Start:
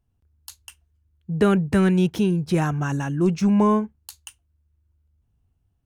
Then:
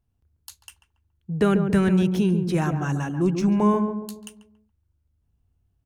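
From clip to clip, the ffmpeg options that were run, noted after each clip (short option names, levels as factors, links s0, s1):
-filter_complex "[0:a]asplit=2[s0][s1];[s1]adelay=140,lowpass=f=850:p=1,volume=0.531,asplit=2[s2][s3];[s3]adelay=140,lowpass=f=850:p=1,volume=0.47,asplit=2[s4][s5];[s5]adelay=140,lowpass=f=850:p=1,volume=0.47,asplit=2[s6][s7];[s7]adelay=140,lowpass=f=850:p=1,volume=0.47,asplit=2[s8][s9];[s9]adelay=140,lowpass=f=850:p=1,volume=0.47,asplit=2[s10][s11];[s11]adelay=140,lowpass=f=850:p=1,volume=0.47[s12];[s0][s2][s4][s6][s8][s10][s12]amix=inputs=7:normalize=0,volume=0.794"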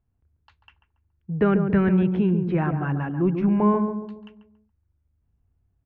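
-af "lowpass=f=2400:w=0.5412,lowpass=f=2400:w=1.3066"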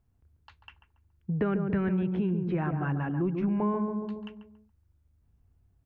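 -af "acompressor=threshold=0.0251:ratio=3,volume=1.41"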